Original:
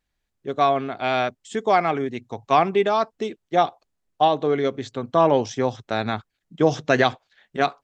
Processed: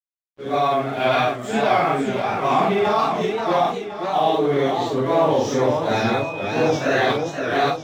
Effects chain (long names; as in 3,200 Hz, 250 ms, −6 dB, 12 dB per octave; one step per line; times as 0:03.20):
random phases in long frames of 200 ms
in parallel at 0 dB: compressor whose output falls as the input rises −23 dBFS, ratio −1
on the sum: dead-zone distortion −42 dBFS
0:05.93–0:06.67: steady tone 2,500 Hz −29 dBFS
feedback echo with a swinging delay time 526 ms, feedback 45%, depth 168 cents, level −5.5 dB
level −3 dB